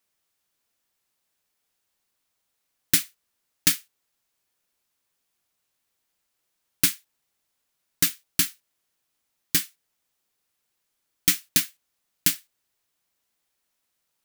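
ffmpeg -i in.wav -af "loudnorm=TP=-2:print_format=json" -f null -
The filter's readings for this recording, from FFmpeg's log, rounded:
"input_i" : "-23.8",
"input_tp" : "-1.9",
"input_lra" : "4.1",
"input_thresh" : "-35.3",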